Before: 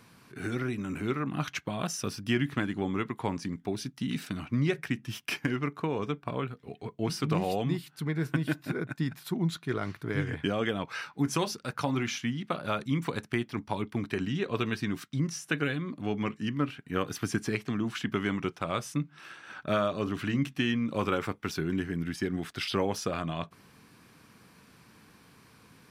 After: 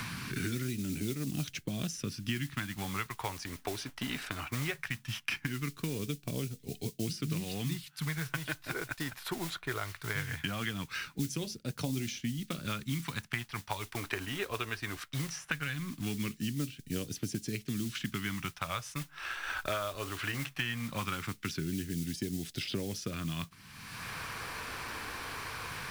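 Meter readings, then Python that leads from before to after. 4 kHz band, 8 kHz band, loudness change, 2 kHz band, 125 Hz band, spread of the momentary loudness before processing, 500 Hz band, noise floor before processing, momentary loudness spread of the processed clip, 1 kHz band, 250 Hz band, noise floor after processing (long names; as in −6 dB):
−0.5 dB, +1.0 dB, −4.5 dB, −1.0 dB, −4.0 dB, 6 LU, −9.0 dB, −59 dBFS, 4 LU, −5.5 dB, −6.5 dB, −58 dBFS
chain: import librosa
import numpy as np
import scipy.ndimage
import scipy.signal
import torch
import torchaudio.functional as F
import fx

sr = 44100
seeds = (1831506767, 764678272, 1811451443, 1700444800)

p1 = fx.backlash(x, sr, play_db=-34.5)
p2 = x + (p1 * librosa.db_to_amplitude(-9.0))
p3 = fx.mod_noise(p2, sr, seeds[0], snr_db=18)
p4 = fx.phaser_stages(p3, sr, stages=2, low_hz=170.0, high_hz=1100.0, hz=0.19, feedback_pct=35)
p5 = fx.band_squash(p4, sr, depth_pct=100)
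y = p5 * librosa.db_to_amplitude(-4.5)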